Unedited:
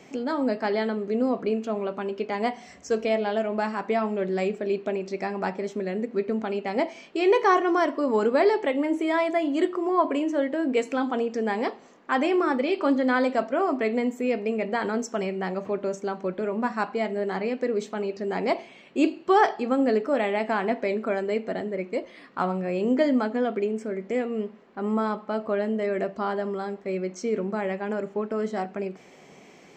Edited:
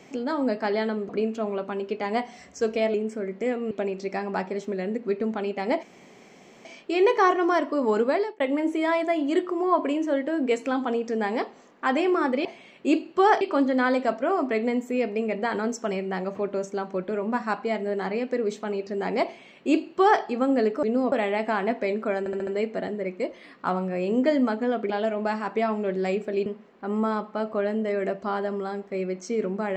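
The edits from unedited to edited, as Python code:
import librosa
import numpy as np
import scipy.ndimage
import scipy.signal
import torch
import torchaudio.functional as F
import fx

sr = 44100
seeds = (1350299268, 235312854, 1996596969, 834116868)

y = fx.edit(x, sr, fx.move(start_s=1.09, length_s=0.29, to_s=20.13),
    fx.swap(start_s=3.23, length_s=1.56, other_s=23.63, other_length_s=0.77),
    fx.insert_room_tone(at_s=6.91, length_s=0.82),
    fx.fade_out_span(start_s=8.29, length_s=0.37),
    fx.duplicate(start_s=18.56, length_s=0.96, to_s=12.71),
    fx.stutter(start_s=21.2, slice_s=0.07, count=5), tone=tone)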